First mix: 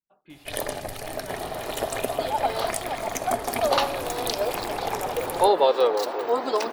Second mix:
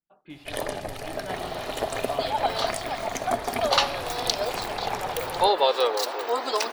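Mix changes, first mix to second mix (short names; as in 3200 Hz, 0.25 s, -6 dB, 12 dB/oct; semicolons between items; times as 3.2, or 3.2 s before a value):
speech +4.0 dB; second sound: add tilt +3.5 dB/oct; master: add high shelf 8900 Hz -10.5 dB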